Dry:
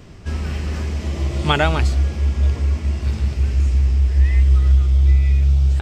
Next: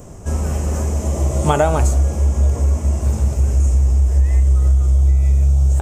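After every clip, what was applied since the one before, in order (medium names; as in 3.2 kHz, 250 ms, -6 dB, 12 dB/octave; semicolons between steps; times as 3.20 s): FFT filter 360 Hz 0 dB, 560 Hz +7 dB, 1 kHz +2 dB, 1.9 kHz -9 dB, 4.6 kHz -12 dB, 6.6 kHz +10 dB; compression, threshold -14 dBFS, peak gain reduction 5.5 dB; de-hum 85.12 Hz, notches 34; trim +4 dB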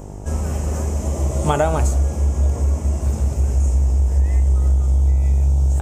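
mains buzz 50 Hz, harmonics 19, -32 dBFS -5 dB/octave; trim -2.5 dB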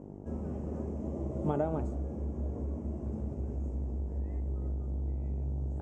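band-pass filter 270 Hz, Q 1.2; trim -6 dB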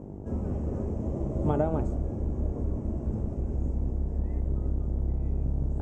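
octave divider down 1 oct, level -2 dB; trim +4 dB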